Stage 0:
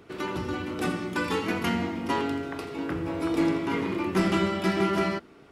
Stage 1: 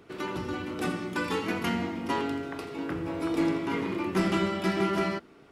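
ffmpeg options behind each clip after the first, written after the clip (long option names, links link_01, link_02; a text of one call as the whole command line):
ffmpeg -i in.wav -af "equalizer=frequency=76:width=2.6:gain=-4,volume=-2dB" out.wav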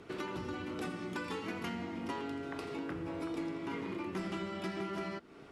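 ffmpeg -i in.wav -af "lowpass=11000,acompressor=threshold=-39dB:ratio=5,volume=1.5dB" out.wav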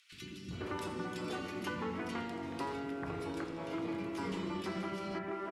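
ffmpeg -i in.wav -filter_complex "[0:a]acrossover=split=260|2300[link_01][link_02][link_03];[link_01]adelay=120[link_04];[link_02]adelay=510[link_05];[link_04][link_05][link_03]amix=inputs=3:normalize=0,volume=2dB" out.wav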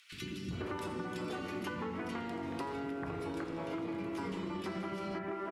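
ffmpeg -i in.wav -af "acompressor=threshold=-43dB:ratio=5,equalizer=frequency=5900:width_type=o:width=2.1:gain=-3.5,volume=7dB" out.wav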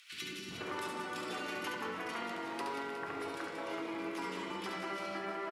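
ffmpeg -i in.wav -filter_complex "[0:a]highpass=frequency=840:poles=1,asplit=2[link_01][link_02];[link_02]aecho=0:1:70|182|361.2|647.9|1107:0.631|0.398|0.251|0.158|0.1[link_03];[link_01][link_03]amix=inputs=2:normalize=0,volume=3dB" out.wav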